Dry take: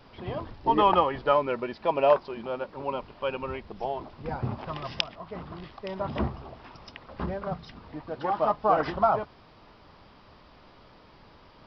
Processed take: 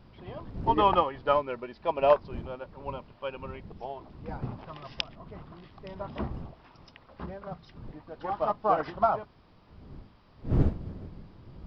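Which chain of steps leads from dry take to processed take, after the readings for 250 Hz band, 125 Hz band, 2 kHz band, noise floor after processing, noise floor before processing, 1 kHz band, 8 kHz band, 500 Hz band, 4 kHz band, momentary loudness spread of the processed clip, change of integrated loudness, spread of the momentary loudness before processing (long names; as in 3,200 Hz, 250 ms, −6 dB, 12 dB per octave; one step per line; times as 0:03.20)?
−2.0 dB, +2.5 dB, −4.5 dB, −57 dBFS, −54 dBFS, −2.5 dB, can't be measured, −2.5 dB, −3.5 dB, 21 LU, −1.5 dB, 19 LU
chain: wind on the microphone 170 Hz −35 dBFS
expander for the loud parts 1.5 to 1, over −32 dBFS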